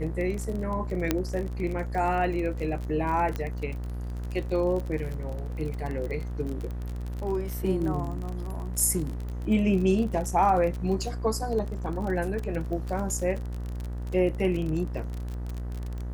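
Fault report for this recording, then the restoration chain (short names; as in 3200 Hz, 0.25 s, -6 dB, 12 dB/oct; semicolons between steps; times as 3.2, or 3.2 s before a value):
buzz 60 Hz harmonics 33 -33 dBFS
crackle 37/s -31 dBFS
1.11 pop -9 dBFS
3.36 pop -18 dBFS
10.29 gap 3.2 ms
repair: de-click; de-hum 60 Hz, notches 33; interpolate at 10.29, 3.2 ms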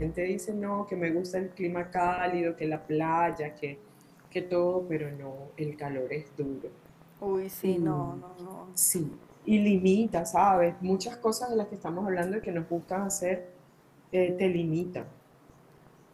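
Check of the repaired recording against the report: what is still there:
1.11 pop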